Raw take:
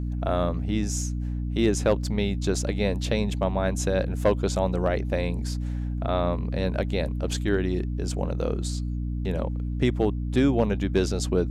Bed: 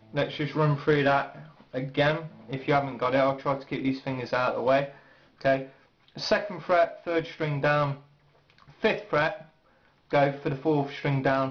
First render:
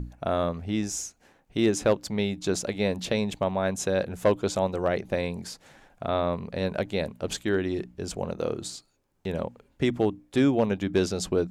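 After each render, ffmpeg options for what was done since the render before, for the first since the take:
-af "bandreject=f=60:t=h:w=6,bandreject=f=120:t=h:w=6,bandreject=f=180:t=h:w=6,bandreject=f=240:t=h:w=6,bandreject=f=300:t=h:w=6"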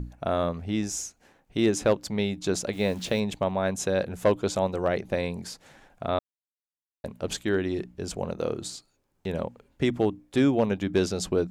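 -filter_complex "[0:a]asettb=1/sr,asplit=3[a][b][c];[a]atrim=end=2.734[d];[b]atrim=start=2.73:end=3.2,asetpts=PTS-STARTPTS,afade=t=in:d=0.004:c=qsin,afade=t=out:st=0.466:d=0.004:c=qsin,acrusher=bits=9:dc=4:mix=0:aa=0.000001[e];[c]atrim=start=3.196[f];[d][e]acrossfade=d=0.004:c1=hsin:c2=qsin[g];[g][f]acrossfade=d=0.004:c1=qsin:c2=hsin,asplit=3[h][i][j];[h]atrim=end=6.19,asetpts=PTS-STARTPTS,afade=t=out:st=6.186:d=0.004:c=hsin[k];[i]atrim=start=6.19:end=7.04,asetpts=PTS-STARTPTS,volume=0[l];[j]atrim=start=7.04,asetpts=PTS-STARTPTS,afade=t=in:d=0.004:c=hsin[m];[k][l][m]concat=n=3:v=0:a=1"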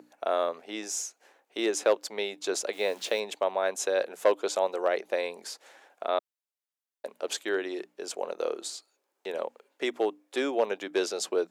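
-af "highpass=f=390:w=0.5412,highpass=f=390:w=1.3066"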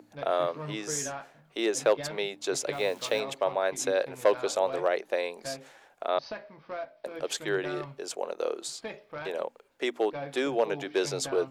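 -filter_complex "[1:a]volume=-15dB[a];[0:a][a]amix=inputs=2:normalize=0"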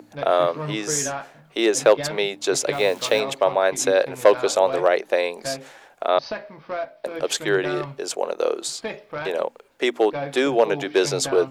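-af "volume=8.5dB"

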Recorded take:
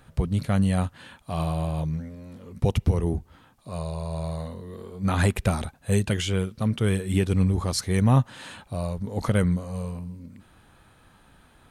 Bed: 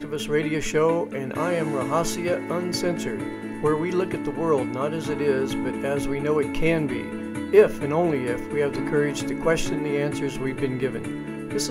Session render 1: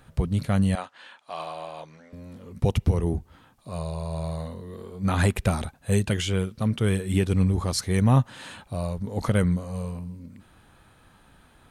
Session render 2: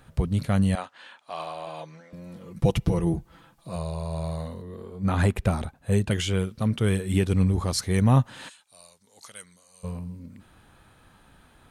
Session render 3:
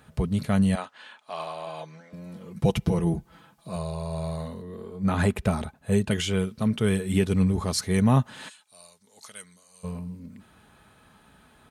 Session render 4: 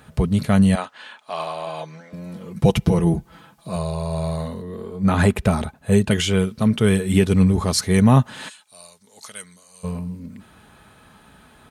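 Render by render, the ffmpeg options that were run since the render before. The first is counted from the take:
-filter_complex "[0:a]asettb=1/sr,asplit=3[a][b][c];[a]atrim=end=0.754[d];[b]atrim=start=0.75:end=2.13,asetpts=PTS-STARTPTS,afade=t=in:d=0.004:c=qsin,afade=t=out:st=1.376:d=0.004:c=qsin,highpass=600,lowpass=6k[e];[c]atrim=start=2.126[f];[d][e]acrossfade=d=0.004:c1=hsin:c2=qsin[g];[g][f]acrossfade=d=0.004:c1=qsin:c2=hsin"
-filter_complex "[0:a]asettb=1/sr,asplit=3[a][b][c];[a]atrim=end=1.664[d];[b]atrim=start=1.66:end=3.76,asetpts=PTS-STARTPTS,afade=t=in:d=0.004:c=qsin,afade=t=out:st=2.096:d=0.004:c=qsin,aecho=1:1:6:0.65,atrim=end_sample=92610[e];[c]atrim=start=3.756[f];[d][e]acrossfade=d=0.004:c1=hsin:c2=qsin[g];[g][f]acrossfade=d=0.004:c1=qsin:c2=hsin,asettb=1/sr,asplit=3[h][i][j];[h]atrim=end=4.624[k];[i]atrim=start=4.62:end=6.11,asetpts=PTS-STARTPTS,afade=t=in:d=0.004:c=qsin,afade=t=out:st=1.486:d=0.004:c=qsin,highshelf=f=2.2k:g=-6.5[l];[j]atrim=start=6.106[m];[k][l]acrossfade=d=0.004:c1=hsin:c2=qsin[n];[n][m]acrossfade=d=0.004:c1=qsin:c2=hsin,asplit=3[o][p][q];[o]afade=t=out:st=8.48:d=0.02[r];[p]bandpass=f=7.2k:t=q:w=1.2,afade=t=in:st=8.48:d=0.02,afade=t=out:st=9.83:d=0.02[s];[q]afade=t=in:st=9.83:d=0.02[t];[r][s][t]amix=inputs=3:normalize=0"
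-af "highpass=64,aecho=1:1:4.7:0.32"
-af "volume=6.5dB,alimiter=limit=-3dB:level=0:latency=1"

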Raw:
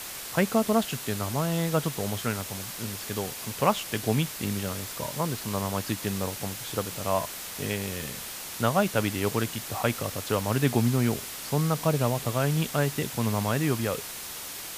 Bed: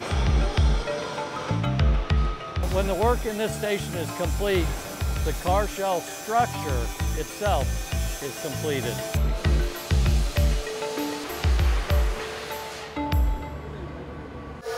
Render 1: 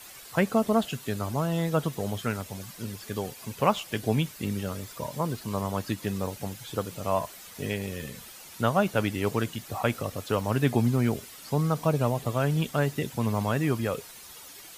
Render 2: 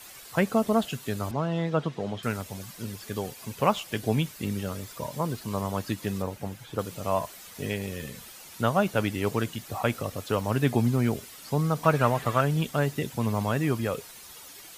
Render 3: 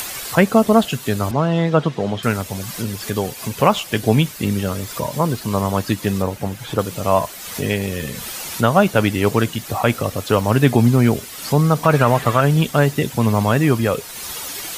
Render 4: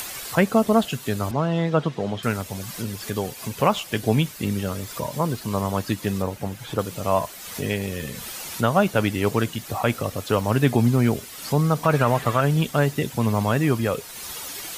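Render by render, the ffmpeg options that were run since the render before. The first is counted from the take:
-af "afftdn=nr=11:nf=-38"
-filter_complex "[0:a]asettb=1/sr,asplit=3[a][b][c];[a]atrim=end=1.314[d];[b]atrim=start=1.31:end=2.23,asetpts=PTS-STARTPTS,afade=t=in:d=0.004:c=qsin,afade=t=out:st=0.916:d=0.004:c=qsin,highpass=120,lowpass=3.8k[e];[c]atrim=start=2.226[f];[d][e]acrossfade=d=0.004:c1=hsin:c2=qsin[g];[g][f]acrossfade=d=0.004:c1=qsin:c2=hsin,asettb=1/sr,asplit=3[h][i][j];[h]atrim=end=6.224[k];[i]atrim=start=6.22:end=6.79,asetpts=PTS-STARTPTS,afade=t=in:d=0.004:c=qsin,afade=t=out:st=0.566:d=0.004:c=qsin,acrossover=split=2600[l][m];[m]acompressor=threshold=-50dB:ratio=4:attack=1:release=60[n];[l][n]amix=inputs=2:normalize=0[o];[j]atrim=start=6.786[p];[k][o]acrossfade=d=0.004:c1=hsin:c2=qsin[q];[q][p]acrossfade=d=0.004:c1=qsin:c2=hsin,asettb=1/sr,asplit=3[r][s][t];[r]atrim=end=11.844[u];[s]atrim=start=11.84:end=12.41,asetpts=PTS-STARTPTS,afade=t=in:d=0.004:c=qsin,afade=t=out:st=0.566:d=0.004:c=qsin,equalizer=f=1.6k:w=1:g=13.5[v];[t]atrim=start=12.406[w];[u][v]acrossfade=d=0.004:c1=hsin:c2=qsin[x];[x][w]acrossfade=d=0.004:c1=qsin:c2=hsin"
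-af "acompressor=mode=upward:threshold=-31dB:ratio=2.5,alimiter=level_in=10.5dB:limit=-1dB:release=50:level=0:latency=1"
-af "volume=-5dB"

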